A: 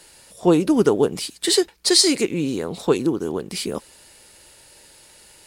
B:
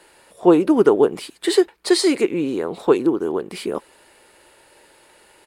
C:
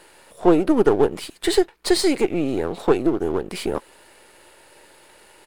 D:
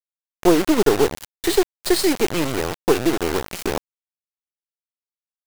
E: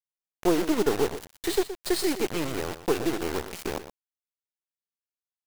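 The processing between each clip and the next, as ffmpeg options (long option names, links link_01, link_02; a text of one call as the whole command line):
ffmpeg -i in.wav -af "firequalizer=gain_entry='entry(110,0);entry(220,5);entry(360,12);entry(500,10);entry(1000,12);entry(5600,-4);entry(8600,0)':delay=0.05:min_phase=1,volume=-7.5dB" out.wav
ffmpeg -i in.wav -filter_complex "[0:a]aeval=exprs='if(lt(val(0),0),0.447*val(0),val(0))':channel_layout=same,asplit=2[link_01][link_02];[link_02]acompressor=threshold=-24dB:ratio=6,volume=0dB[link_03];[link_01][link_03]amix=inputs=2:normalize=0,volume=-2dB" out.wav
ffmpeg -i in.wav -af "acrusher=bits=3:mix=0:aa=0.000001" out.wav
ffmpeg -i in.wav -af "aecho=1:1:120:0.251,volume=-8dB" out.wav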